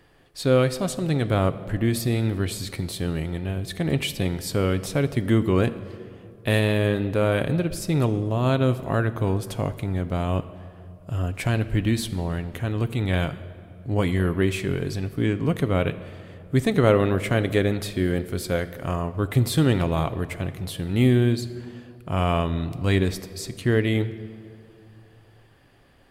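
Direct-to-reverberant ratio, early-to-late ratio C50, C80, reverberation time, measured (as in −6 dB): 11.0 dB, 14.0 dB, 15.0 dB, 2.5 s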